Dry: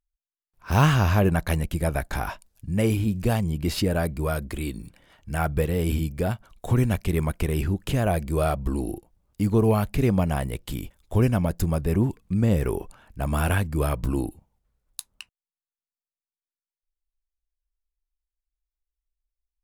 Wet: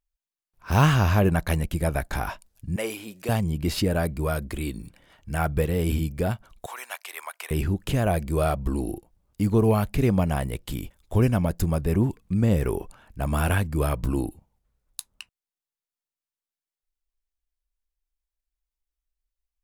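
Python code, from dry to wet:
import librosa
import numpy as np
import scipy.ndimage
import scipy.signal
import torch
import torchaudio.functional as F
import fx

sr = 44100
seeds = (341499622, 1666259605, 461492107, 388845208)

y = fx.highpass(x, sr, hz=530.0, slope=12, at=(2.76, 3.29))
y = fx.highpass(y, sr, hz=810.0, slope=24, at=(6.66, 7.51))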